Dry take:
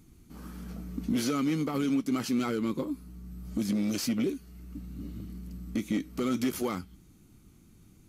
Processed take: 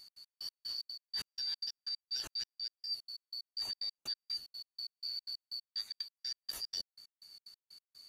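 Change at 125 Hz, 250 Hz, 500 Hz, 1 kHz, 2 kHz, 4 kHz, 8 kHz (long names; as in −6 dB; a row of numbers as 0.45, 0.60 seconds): below −30 dB, below −40 dB, below −30 dB, −23.0 dB, −14.5 dB, +7.0 dB, −8.5 dB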